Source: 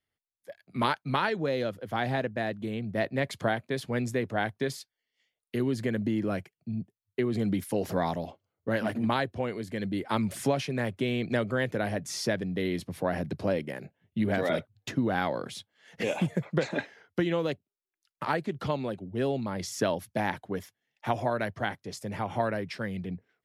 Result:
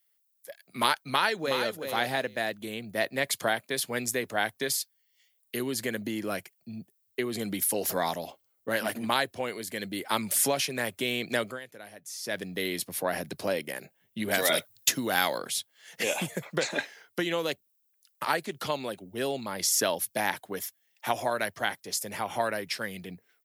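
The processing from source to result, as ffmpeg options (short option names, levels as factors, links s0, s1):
-filter_complex "[0:a]asplit=2[s0][s1];[s1]afade=t=in:st=1.03:d=0.01,afade=t=out:st=1.68:d=0.01,aecho=0:1:370|740:0.421697|0.0632545[s2];[s0][s2]amix=inputs=2:normalize=0,asettb=1/sr,asplit=3[s3][s4][s5];[s3]atrim=end=14.314[s6];[s4]atrim=start=14.31:end=15.38,asetpts=PTS-STARTPTS,afade=t=in:d=0.004:c=qsin,afade=t=out:st=1.066:d=0.004:c=qsin,highshelf=f=3200:g=10.5[s7];[s5]atrim=start=15.376[s8];[s6][s7]acrossfade=d=0.004:c1=hsin:c2=qsin[s9];[s9][s8]acrossfade=d=0.004:c1=qsin:c2=hsin,asplit=3[s10][s11][s12];[s10]atrim=end=11.6,asetpts=PTS-STARTPTS,afade=t=out:st=11.44:d=0.16:silence=0.158489[s13];[s11]atrim=start=11.6:end=12.23,asetpts=PTS-STARTPTS,volume=0.158[s14];[s12]atrim=start=12.23,asetpts=PTS-STARTPTS,afade=t=in:d=0.16:silence=0.158489[s15];[s13][s14][s15]concat=n=3:v=0:a=1,aemphasis=mode=production:type=riaa,volume=1.19"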